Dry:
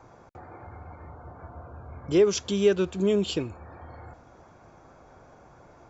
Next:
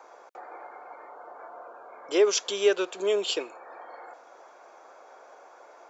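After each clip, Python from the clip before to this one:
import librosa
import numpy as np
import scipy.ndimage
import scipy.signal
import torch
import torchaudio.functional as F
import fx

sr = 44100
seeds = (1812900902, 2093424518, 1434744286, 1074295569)

y = scipy.signal.sosfilt(scipy.signal.butter(4, 450.0, 'highpass', fs=sr, output='sos'), x)
y = y * librosa.db_to_amplitude(4.0)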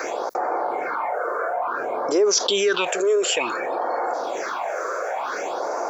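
y = fx.phaser_stages(x, sr, stages=6, low_hz=210.0, high_hz=3200.0, hz=0.56, feedback_pct=25)
y = fx.env_flatten(y, sr, amount_pct=70)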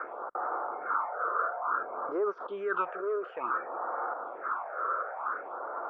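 y = fx.ladder_lowpass(x, sr, hz=1400.0, resonance_pct=75)
y = fx.upward_expand(y, sr, threshold_db=-45.0, expansion=1.5)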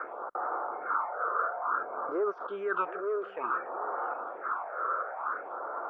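y = x + 10.0 ** (-16.0 / 20.0) * np.pad(x, (int(736 * sr / 1000.0), 0))[:len(x)]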